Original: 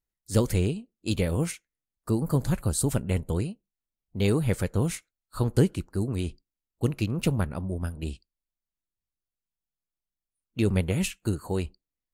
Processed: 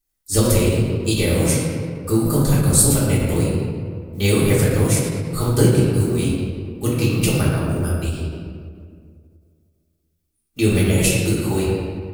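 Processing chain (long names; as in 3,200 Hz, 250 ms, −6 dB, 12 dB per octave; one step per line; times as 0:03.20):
one scale factor per block 7 bits
high-shelf EQ 4,400 Hz +12 dB
feedback echo with a high-pass in the loop 113 ms, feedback 34%, level −15.5 dB
convolution reverb RT60 2.1 s, pre-delay 3 ms, DRR −8 dB
every ending faded ahead of time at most 130 dB per second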